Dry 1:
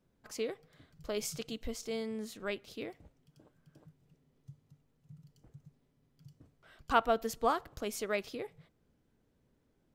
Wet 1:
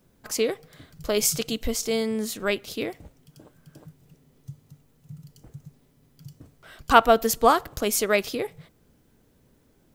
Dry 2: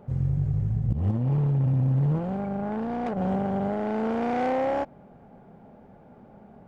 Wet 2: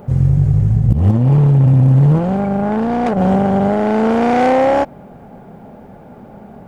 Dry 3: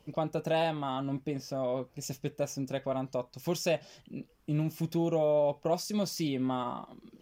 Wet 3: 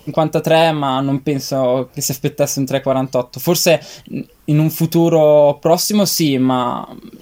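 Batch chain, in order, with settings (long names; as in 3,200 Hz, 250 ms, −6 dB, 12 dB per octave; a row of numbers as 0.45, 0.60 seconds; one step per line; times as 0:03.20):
high-shelf EQ 7,300 Hz +10 dB
normalise the peak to −1.5 dBFS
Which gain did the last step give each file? +12.0, +13.0, +16.5 decibels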